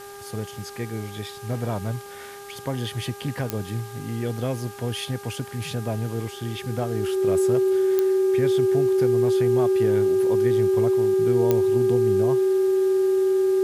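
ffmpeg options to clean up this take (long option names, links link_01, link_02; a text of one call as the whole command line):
ffmpeg -i in.wav -af "adeclick=threshold=4,bandreject=frequency=402.5:width_type=h:width=4,bandreject=frequency=805:width_type=h:width=4,bandreject=frequency=1207.5:width_type=h:width=4,bandreject=frequency=1610:width_type=h:width=4,bandreject=frequency=380:width=30,afwtdn=0.005" out.wav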